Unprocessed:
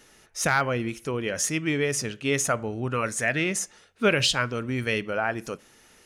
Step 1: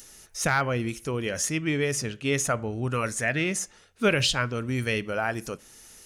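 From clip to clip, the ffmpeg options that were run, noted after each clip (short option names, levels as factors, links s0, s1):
-filter_complex "[0:a]lowshelf=f=88:g=10,acrossover=split=5000[s0][s1];[s1]acompressor=mode=upward:threshold=0.0141:ratio=2.5[s2];[s0][s2]amix=inputs=2:normalize=0,volume=0.841"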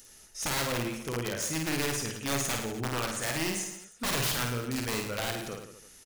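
-af "aeval=exprs='(mod(8.91*val(0)+1,2)-1)/8.91':c=same,aecho=1:1:50|107.5|173.6|249.7|337.1:0.631|0.398|0.251|0.158|0.1,volume=0.501"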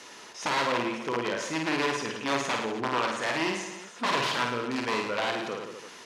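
-af "aeval=exprs='val(0)+0.5*0.0106*sgn(val(0))':c=same,highpass=260,lowpass=3700,equalizer=f=1000:w=7.4:g=9.5,volume=1.5"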